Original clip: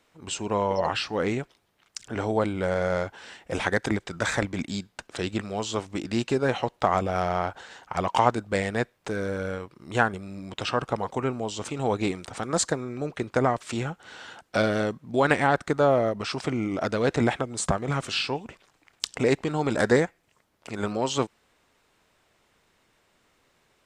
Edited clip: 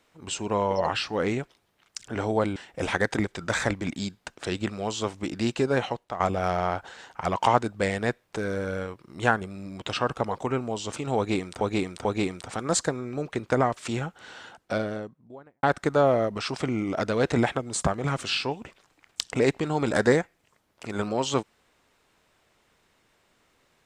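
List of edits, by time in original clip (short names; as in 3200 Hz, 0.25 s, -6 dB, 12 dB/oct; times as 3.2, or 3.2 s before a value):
2.56–3.28 cut
6.56–6.92 fade out quadratic, to -11.5 dB
11.89–12.33 loop, 3 plays
14.02–15.47 studio fade out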